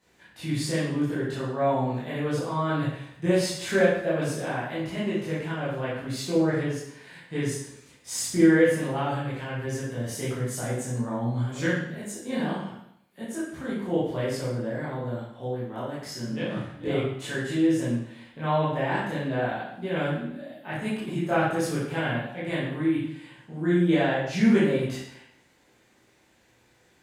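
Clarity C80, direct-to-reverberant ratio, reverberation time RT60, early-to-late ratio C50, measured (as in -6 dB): 4.0 dB, -10.5 dB, 0.75 s, 0.0 dB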